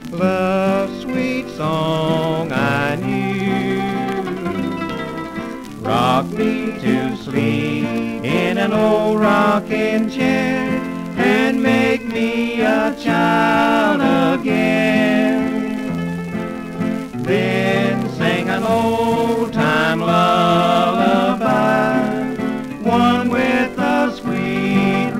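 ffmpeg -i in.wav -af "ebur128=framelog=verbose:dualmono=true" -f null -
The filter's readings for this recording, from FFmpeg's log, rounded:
Integrated loudness:
  I:         -14.4 LUFS
  Threshold: -24.4 LUFS
Loudness range:
  LRA:         4.8 LU
  Threshold: -34.3 LUFS
  LRA low:   -17.2 LUFS
  LRA high:  -12.5 LUFS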